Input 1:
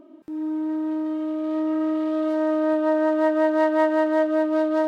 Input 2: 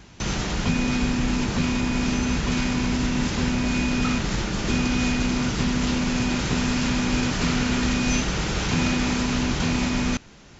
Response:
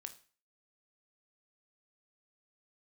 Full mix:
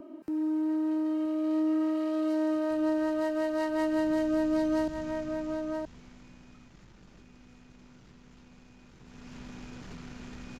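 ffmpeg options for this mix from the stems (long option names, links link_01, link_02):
-filter_complex "[0:a]bandreject=frequency=3500:width=6.5,volume=2dB,asplit=2[link_01][link_02];[link_02]volume=-10dB[link_03];[1:a]acompressor=threshold=-35dB:ratio=3,aeval=exprs='0.0841*(cos(1*acos(clip(val(0)/0.0841,-1,1)))-cos(1*PI/2))+0.0075*(cos(6*acos(clip(val(0)/0.0841,-1,1)))-cos(6*PI/2))':channel_layout=same,acrossover=split=460|2200|4400[link_04][link_05][link_06][link_07];[link_04]acompressor=threshold=-33dB:ratio=4[link_08];[link_05]acompressor=threshold=-45dB:ratio=4[link_09];[link_06]acompressor=threshold=-54dB:ratio=4[link_10];[link_07]acompressor=threshold=-55dB:ratio=4[link_11];[link_08][link_09][link_10][link_11]amix=inputs=4:normalize=0,adelay=2500,volume=4dB,afade=type=in:start_time=3.7:duration=0.6:silence=0.223872,afade=type=out:start_time=5.12:duration=0.79:silence=0.266073,afade=type=in:start_time=9:duration=0.42:silence=0.281838,asplit=2[link_12][link_13];[link_13]volume=-9.5dB[link_14];[link_03][link_14]amix=inputs=2:normalize=0,aecho=0:1:973:1[link_15];[link_01][link_12][link_15]amix=inputs=3:normalize=0,acrossover=split=240|3000[link_16][link_17][link_18];[link_17]acompressor=threshold=-33dB:ratio=4[link_19];[link_16][link_19][link_18]amix=inputs=3:normalize=0"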